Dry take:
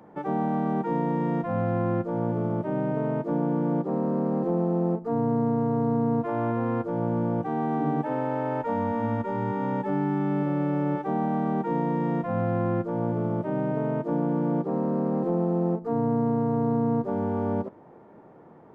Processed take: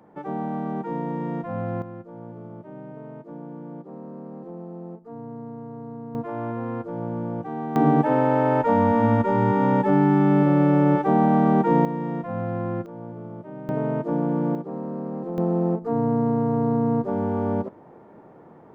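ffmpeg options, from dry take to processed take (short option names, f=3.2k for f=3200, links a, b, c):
-af "asetnsamples=n=441:p=0,asendcmd='1.82 volume volume -12.5dB;6.15 volume volume -3dB;7.76 volume volume 8dB;11.85 volume volume -2dB;12.86 volume volume -10dB;13.69 volume volume 2dB;14.55 volume volume -5dB;15.38 volume volume 2.5dB',volume=-2.5dB"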